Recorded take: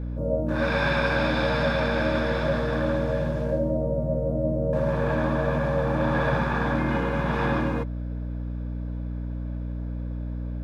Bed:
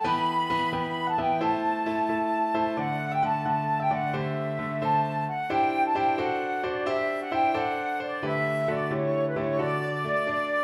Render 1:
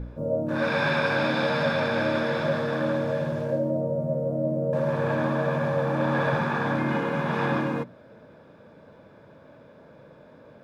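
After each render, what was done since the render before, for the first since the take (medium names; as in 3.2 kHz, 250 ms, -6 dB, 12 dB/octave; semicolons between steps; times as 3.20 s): de-hum 60 Hz, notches 5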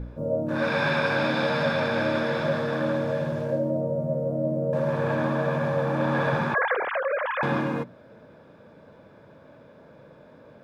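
6.54–7.43 s: formants replaced by sine waves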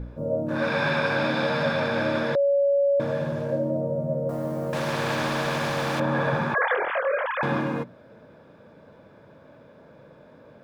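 2.35–3.00 s: bleep 562 Hz -17.5 dBFS; 4.29–6.00 s: spectrum-flattening compressor 2:1; 6.58–7.25 s: doubling 24 ms -4.5 dB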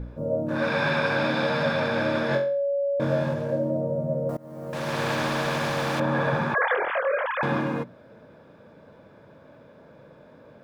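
2.27–3.34 s: flutter echo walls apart 3.8 m, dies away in 0.4 s; 4.37–5.01 s: fade in, from -23.5 dB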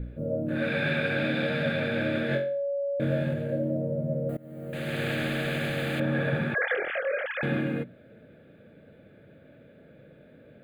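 static phaser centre 2.4 kHz, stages 4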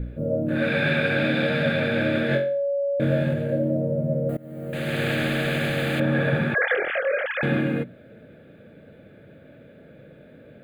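trim +5 dB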